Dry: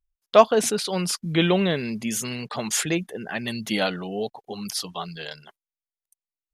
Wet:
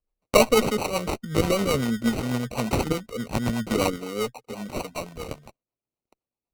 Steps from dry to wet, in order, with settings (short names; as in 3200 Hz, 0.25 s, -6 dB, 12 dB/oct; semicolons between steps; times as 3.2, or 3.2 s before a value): ripple EQ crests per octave 1, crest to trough 14 dB; sample-and-hold 26×; added harmonics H 6 -21 dB, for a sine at -1.5 dBFS; rotary speaker horn 8 Hz; gain +1 dB